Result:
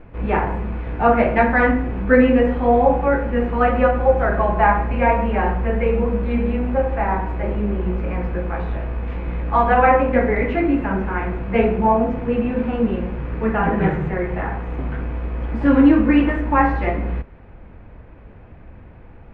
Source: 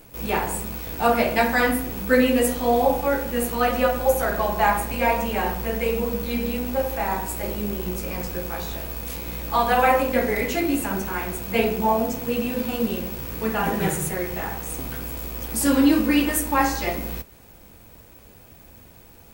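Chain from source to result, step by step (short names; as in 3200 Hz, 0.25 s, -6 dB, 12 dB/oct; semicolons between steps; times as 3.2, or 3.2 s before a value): LPF 2200 Hz 24 dB/oct; low shelf 91 Hz +9.5 dB; gain +4 dB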